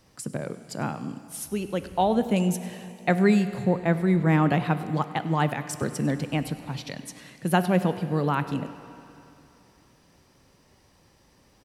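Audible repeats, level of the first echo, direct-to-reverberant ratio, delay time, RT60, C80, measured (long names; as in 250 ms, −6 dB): 1, −20.0 dB, 11.0 dB, 100 ms, 2.9 s, 12.0 dB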